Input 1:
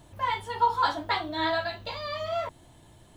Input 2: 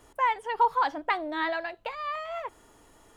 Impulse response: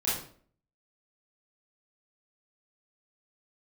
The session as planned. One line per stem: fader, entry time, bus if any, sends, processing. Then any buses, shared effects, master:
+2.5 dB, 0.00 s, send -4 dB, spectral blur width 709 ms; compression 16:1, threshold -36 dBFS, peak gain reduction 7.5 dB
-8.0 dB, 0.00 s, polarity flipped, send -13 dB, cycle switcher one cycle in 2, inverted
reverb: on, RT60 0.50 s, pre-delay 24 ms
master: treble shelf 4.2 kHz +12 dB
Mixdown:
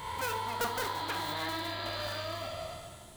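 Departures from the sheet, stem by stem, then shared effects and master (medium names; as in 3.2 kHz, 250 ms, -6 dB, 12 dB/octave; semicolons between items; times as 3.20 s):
stem 1 +2.5 dB -> -4.5 dB; stem 2 -8.0 dB -> -15.5 dB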